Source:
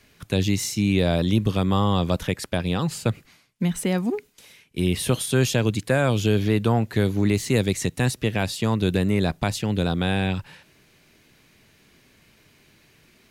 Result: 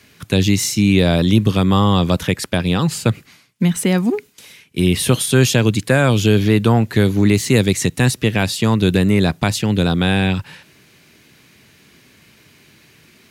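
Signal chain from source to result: high-pass 80 Hz; peaking EQ 640 Hz -3.5 dB 1.2 oct; trim +8 dB

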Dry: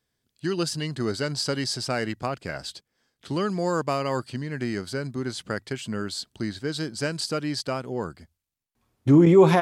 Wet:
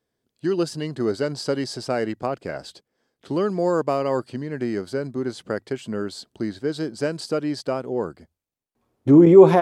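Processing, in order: peaking EQ 450 Hz +11.5 dB 2.6 oct; trim -5.5 dB

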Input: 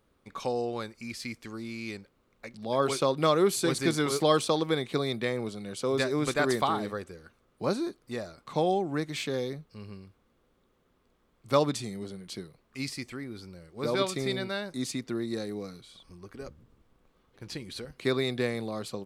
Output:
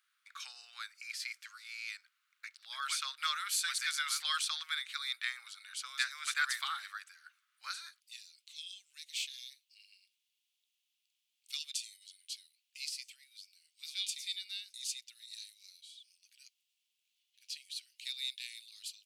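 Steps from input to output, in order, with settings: elliptic high-pass 1.4 kHz, stop band 80 dB, from 7.99 s 2.7 kHz

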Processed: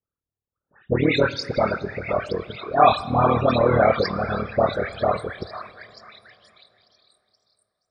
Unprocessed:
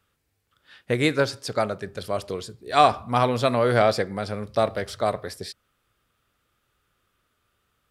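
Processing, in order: level-controlled noise filter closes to 1.1 kHz, open at -18 dBFS; gate with hold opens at -51 dBFS; repeats whose band climbs or falls 481 ms, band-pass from 1.3 kHz, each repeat 0.7 oct, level -8 dB; AM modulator 38 Hz, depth 90%; in parallel at -11 dB: integer overflow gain 19 dB; on the sum: phase dispersion highs, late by 124 ms, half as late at 2 kHz; loudest bins only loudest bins 64; plate-style reverb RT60 3.5 s, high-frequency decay 0.75×, DRR 17 dB; trim +6 dB

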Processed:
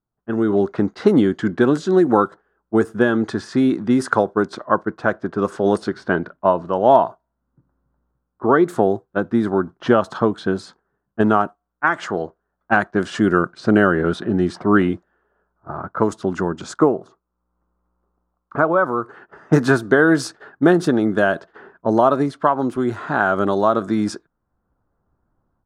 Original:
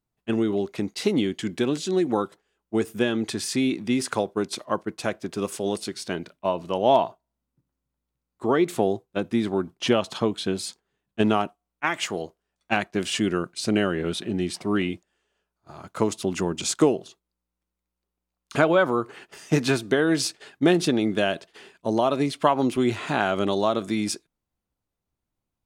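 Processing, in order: level-controlled noise filter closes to 1.3 kHz, open at -19 dBFS; resonant high shelf 1.9 kHz -8 dB, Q 3, from 16.78 s -14 dB, from 18.84 s -8 dB; level rider gain up to 16.5 dB; trim -1 dB

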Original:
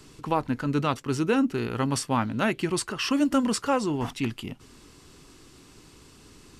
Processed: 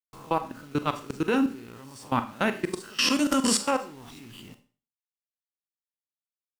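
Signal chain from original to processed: reverse spectral sustain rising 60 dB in 0.38 s; de-esser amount 45%; 2.80–3.71 s: treble shelf 2.1 kHz +9.5 dB; level held to a coarse grid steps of 23 dB; bit crusher 9-bit; Schroeder reverb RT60 0.39 s, combs from 30 ms, DRR 9.5 dB

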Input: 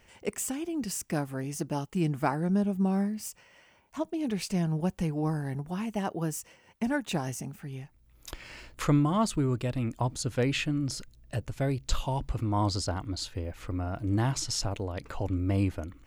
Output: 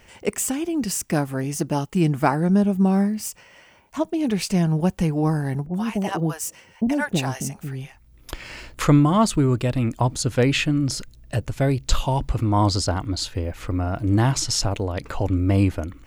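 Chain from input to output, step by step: 5.66–8.29 s: bands offset in time lows, highs 80 ms, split 610 Hz; trim +8.5 dB

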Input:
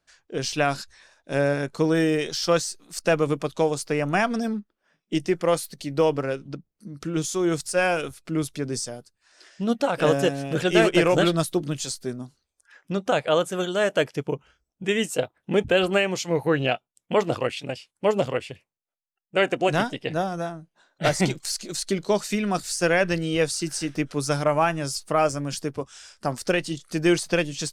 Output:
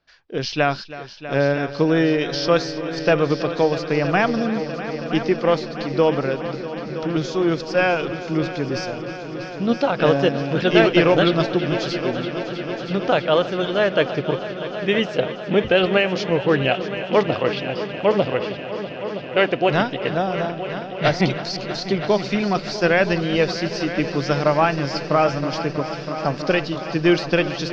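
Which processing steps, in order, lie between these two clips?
steep low-pass 5.3 kHz 48 dB/octave; on a send: multi-head delay 323 ms, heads all three, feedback 72%, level -16 dB; on the sum: trim +3.5 dB

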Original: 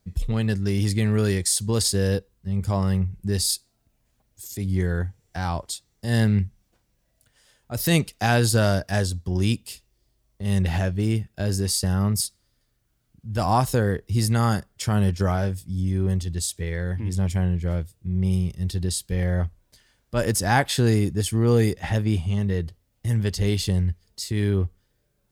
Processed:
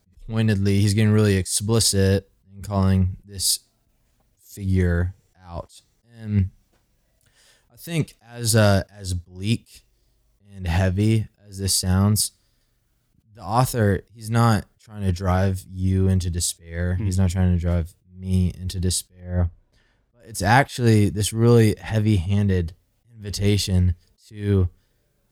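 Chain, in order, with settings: 19.20–20.20 s: low-pass 1.2 kHz 6 dB/octave; attacks held to a fixed rise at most 140 dB/s; trim +4 dB

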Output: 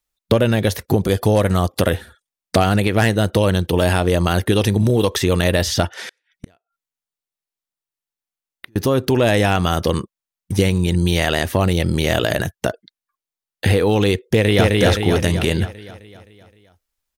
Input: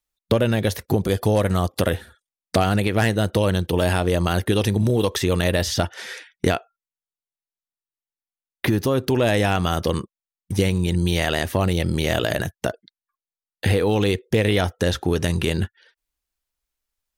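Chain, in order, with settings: 6.08–8.76 s: inverted gate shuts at -24 dBFS, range -39 dB; 14.29–14.75 s: echo throw 260 ms, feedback 55%, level -1 dB; trim +3.5 dB

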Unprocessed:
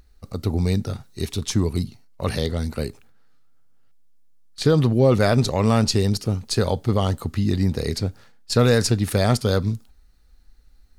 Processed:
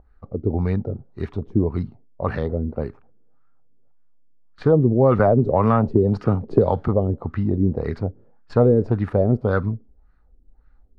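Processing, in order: LFO low-pass sine 1.8 Hz 360–1500 Hz; 5.19–6.88 s: three bands compressed up and down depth 100%; trim -1 dB

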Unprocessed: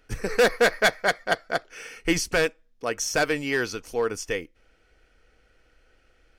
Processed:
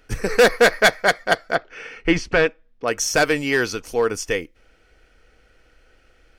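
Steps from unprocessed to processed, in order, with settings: 1.55–2.88 s: low-pass 3.1 kHz 12 dB/octave; trim +5.5 dB

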